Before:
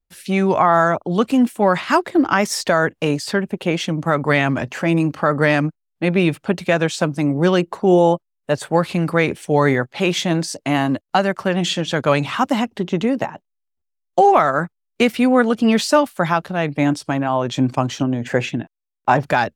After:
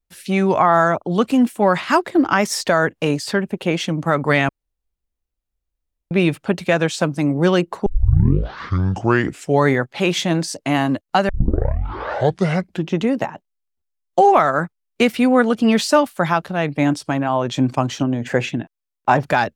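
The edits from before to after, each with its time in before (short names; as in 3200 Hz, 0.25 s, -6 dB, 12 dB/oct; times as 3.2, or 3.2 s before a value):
4.49–6.11 room tone
7.86 tape start 1.75 s
11.29 tape start 1.70 s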